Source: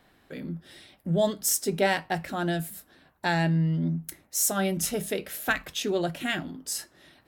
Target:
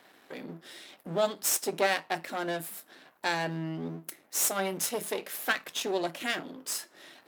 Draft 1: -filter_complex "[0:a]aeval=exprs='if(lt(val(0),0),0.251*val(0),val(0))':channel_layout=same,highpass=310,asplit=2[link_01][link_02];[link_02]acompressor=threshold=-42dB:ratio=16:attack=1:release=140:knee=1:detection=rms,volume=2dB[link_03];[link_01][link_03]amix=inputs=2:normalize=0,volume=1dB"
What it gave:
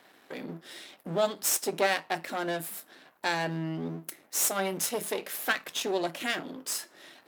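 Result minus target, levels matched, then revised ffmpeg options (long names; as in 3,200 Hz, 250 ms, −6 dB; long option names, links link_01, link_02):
downward compressor: peak gain reduction −7.5 dB
-filter_complex "[0:a]aeval=exprs='if(lt(val(0),0),0.251*val(0),val(0))':channel_layout=same,highpass=310,asplit=2[link_01][link_02];[link_02]acompressor=threshold=-50dB:ratio=16:attack=1:release=140:knee=1:detection=rms,volume=2dB[link_03];[link_01][link_03]amix=inputs=2:normalize=0,volume=1dB"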